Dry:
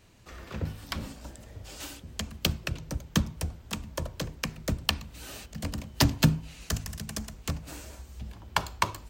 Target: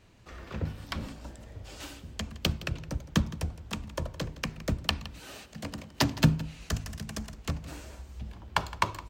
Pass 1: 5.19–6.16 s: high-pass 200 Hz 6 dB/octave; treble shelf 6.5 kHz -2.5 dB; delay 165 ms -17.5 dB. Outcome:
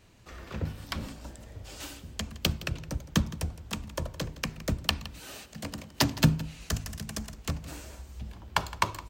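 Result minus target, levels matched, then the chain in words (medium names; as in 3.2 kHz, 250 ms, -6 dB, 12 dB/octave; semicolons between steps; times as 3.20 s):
8 kHz band +3.0 dB
5.19–6.16 s: high-pass 200 Hz 6 dB/octave; treble shelf 6.5 kHz -9.5 dB; delay 165 ms -17.5 dB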